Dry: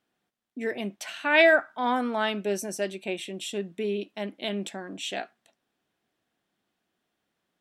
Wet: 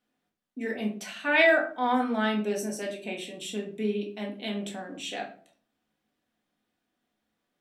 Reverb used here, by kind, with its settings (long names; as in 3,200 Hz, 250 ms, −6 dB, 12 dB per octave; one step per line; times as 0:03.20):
rectangular room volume 330 cubic metres, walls furnished, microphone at 1.9 metres
level −4.5 dB